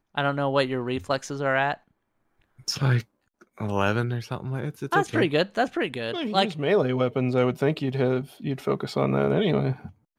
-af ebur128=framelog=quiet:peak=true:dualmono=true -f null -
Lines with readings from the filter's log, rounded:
Integrated loudness:
  I:         -22.5 LUFS
  Threshold: -32.8 LUFS
Loudness range:
  LRA:         3.8 LU
  Threshold: -43.0 LUFS
  LRA low:   -25.3 LUFS
  LRA high:  -21.4 LUFS
True peak:
  Peak:       -9.1 dBFS